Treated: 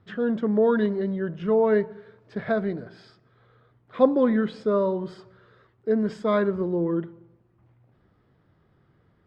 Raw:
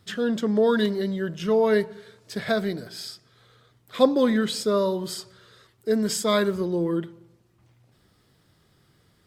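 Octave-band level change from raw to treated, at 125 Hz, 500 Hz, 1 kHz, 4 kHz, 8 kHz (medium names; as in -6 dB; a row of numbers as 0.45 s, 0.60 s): 0.0 dB, 0.0 dB, -0.5 dB, -15.5 dB, under -25 dB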